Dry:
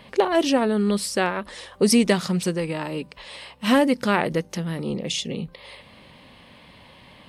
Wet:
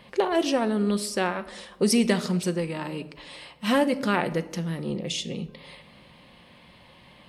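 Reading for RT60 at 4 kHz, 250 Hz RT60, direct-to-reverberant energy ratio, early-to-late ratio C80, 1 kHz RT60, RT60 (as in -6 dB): 0.60 s, 1.6 s, 10.0 dB, 18.5 dB, 0.90 s, 1.0 s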